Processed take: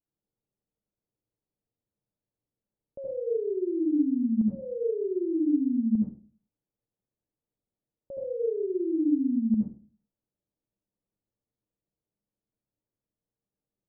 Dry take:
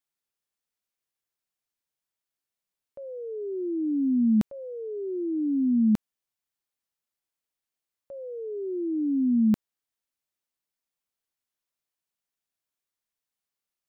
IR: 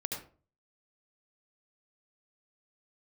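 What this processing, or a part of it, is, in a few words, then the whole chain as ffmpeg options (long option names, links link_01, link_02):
television next door: -filter_complex "[0:a]acompressor=threshold=-36dB:ratio=6,lowpass=540[link_01];[1:a]atrim=start_sample=2205[link_02];[link_01][link_02]afir=irnorm=-1:irlink=0,lowshelf=frequency=390:gain=6.5,volume=4dB"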